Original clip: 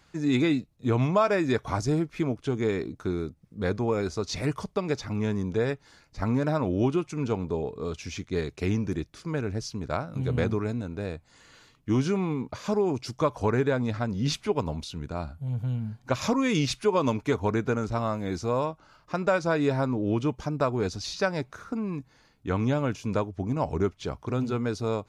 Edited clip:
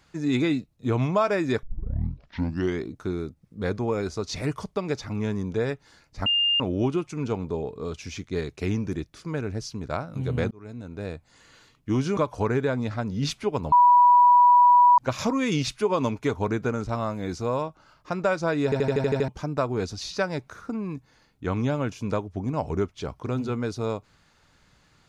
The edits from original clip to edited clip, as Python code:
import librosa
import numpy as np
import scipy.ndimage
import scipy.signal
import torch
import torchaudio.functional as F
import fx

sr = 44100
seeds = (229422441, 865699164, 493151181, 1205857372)

y = fx.edit(x, sr, fx.tape_start(start_s=1.63, length_s=1.22),
    fx.bleep(start_s=6.26, length_s=0.34, hz=2810.0, db=-19.0),
    fx.fade_in_span(start_s=10.51, length_s=0.57),
    fx.cut(start_s=12.17, length_s=1.03),
    fx.bleep(start_s=14.75, length_s=1.26, hz=977.0, db=-12.0),
    fx.stutter_over(start_s=19.67, slice_s=0.08, count=8), tone=tone)